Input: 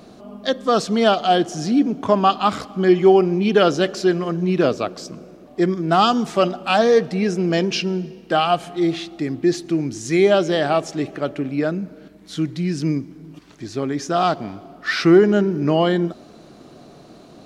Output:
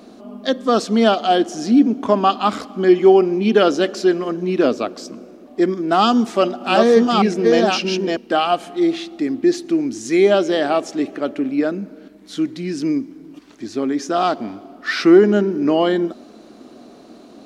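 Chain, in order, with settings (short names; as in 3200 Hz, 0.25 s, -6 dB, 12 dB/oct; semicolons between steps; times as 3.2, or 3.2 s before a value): 5.98–8.17 reverse delay 0.621 s, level -2.5 dB; resonant low shelf 190 Hz -6.5 dB, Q 3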